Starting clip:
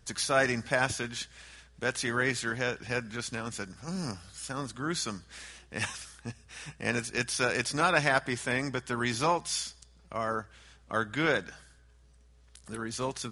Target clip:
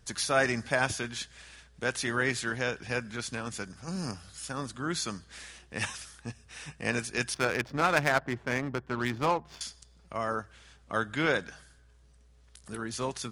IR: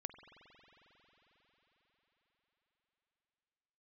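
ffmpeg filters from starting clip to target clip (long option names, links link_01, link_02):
-filter_complex "[0:a]asettb=1/sr,asplit=3[link_01][link_02][link_03];[link_01]atrim=end=7.344[link_04];[link_02]atrim=start=7.34:end=9.61,asetpts=PTS-STARTPTS,afade=type=in:duration=0.004:curve=qsin,afade=type=out:start_time=2.266:duration=0.004:curve=qsin,adynamicsmooth=sensitivity=3:basefreq=790[link_05];[link_03]atrim=start=9.606[link_06];[link_04][link_05]acrossfade=duration=0.004:curve1=hsin:curve2=qsin[link_07];[link_07][link_06]acrossfade=duration=0.004:curve1=qsin:curve2=hsin"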